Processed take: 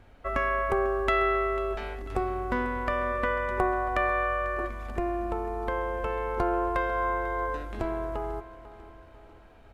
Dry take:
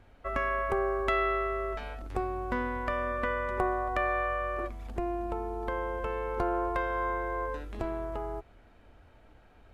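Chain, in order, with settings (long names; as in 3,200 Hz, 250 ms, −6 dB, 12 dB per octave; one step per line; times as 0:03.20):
repeating echo 495 ms, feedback 48%, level −16 dB
level +3 dB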